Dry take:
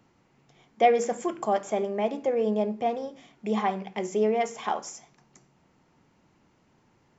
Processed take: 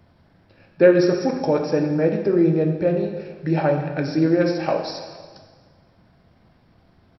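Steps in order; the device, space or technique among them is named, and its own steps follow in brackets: monster voice (pitch shift -5 st; bass shelf 100 Hz +7 dB; reverberation RT60 1.6 s, pre-delay 5 ms, DRR 3.5 dB); trim +5.5 dB

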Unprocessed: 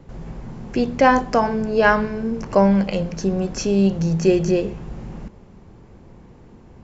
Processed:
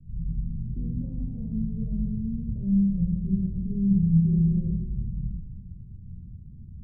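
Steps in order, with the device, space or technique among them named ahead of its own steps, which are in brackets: 1.46–2.48 s: peaking EQ 1 kHz -12.5 dB 1.4 oct; club heard from the street (peak limiter -12 dBFS, peak gain reduction 9 dB; low-pass 160 Hz 24 dB/octave; reverberation RT60 1.2 s, pre-delay 13 ms, DRR -7 dB); trim -1 dB

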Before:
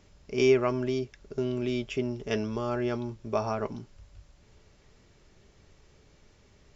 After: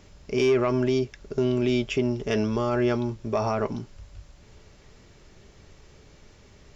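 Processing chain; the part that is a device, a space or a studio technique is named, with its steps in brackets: soft clipper into limiter (saturation -14.5 dBFS, distortion -21 dB; peak limiter -21.5 dBFS, peak gain reduction 6 dB); trim +7 dB

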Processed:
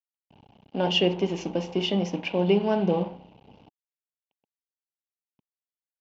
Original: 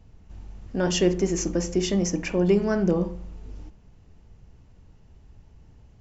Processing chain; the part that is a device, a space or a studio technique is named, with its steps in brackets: blown loudspeaker (crossover distortion -40 dBFS; cabinet simulation 190–4000 Hz, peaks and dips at 340 Hz -6 dB, 830 Hz +8 dB, 1.3 kHz -9 dB, 1.8 kHz -10 dB, 2.9 kHz +9 dB); trim +2 dB

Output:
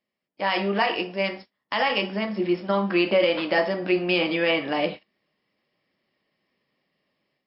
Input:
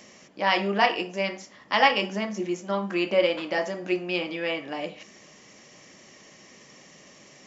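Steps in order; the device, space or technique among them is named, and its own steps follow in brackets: gate -39 dBFS, range -31 dB; low-bitrate web radio (level rider gain up to 10.5 dB; peak limiter -9 dBFS, peak gain reduction 8 dB; trim -1.5 dB; MP3 32 kbps 12 kHz)

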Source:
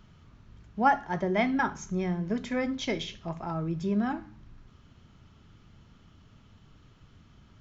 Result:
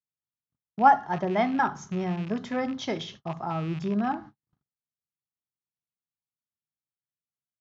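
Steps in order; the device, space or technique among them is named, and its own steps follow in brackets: gate -44 dBFS, range -51 dB; car door speaker with a rattle (rattle on loud lows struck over -35 dBFS, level -32 dBFS; cabinet simulation 110–6600 Hz, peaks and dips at 140 Hz +5 dB, 780 Hz +7 dB, 1.2 kHz +5 dB, 2.4 kHz -7 dB)

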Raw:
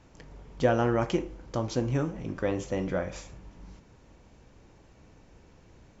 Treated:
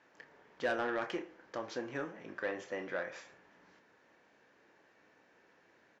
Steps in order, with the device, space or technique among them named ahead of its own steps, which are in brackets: intercom (band-pass 360–4900 Hz; peaking EQ 1.7 kHz +11 dB 0.5 oct; saturation -19.5 dBFS, distortion -14 dB; doubling 29 ms -11.5 dB); trim -6.5 dB

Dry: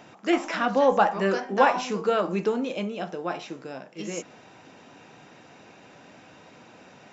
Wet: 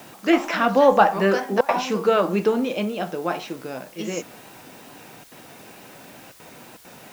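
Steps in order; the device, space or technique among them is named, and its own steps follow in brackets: worn cassette (low-pass 6.5 kHz; wow and flutter; level dips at 1.61/5.24/6.32/6.77 s, 75 ms -26 dB; white noise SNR 27 dB); trim +5 dB

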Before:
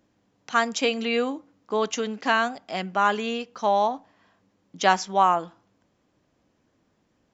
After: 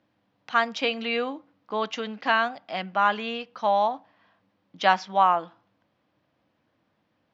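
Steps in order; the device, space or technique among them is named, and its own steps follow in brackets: guitar cabinet (cabinet simulation 110–4400 Hz, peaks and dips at 170 Hz -4 dB, 250 Hz -5 dB, 400 Hz -9 dB)

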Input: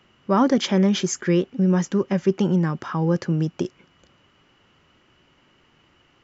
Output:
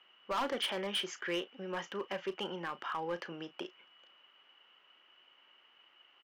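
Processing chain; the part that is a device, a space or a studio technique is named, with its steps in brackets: megaphone (band-pass 690–2900 Hz; peaking EQ 3 kHz +10 dB 0.34 oct; hard clipper -24.5 dBFS, distortion -9 dB; doubling 35 ms -14 dB); trim -5.5 dB

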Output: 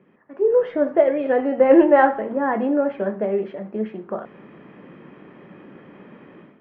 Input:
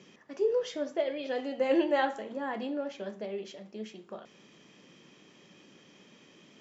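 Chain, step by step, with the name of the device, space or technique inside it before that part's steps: action camera in a waterproof case (low-pass 1.8 kHz 24 dB/octave; level rider gain up to 15 dB; AAC 48 kbps 32 kHz)

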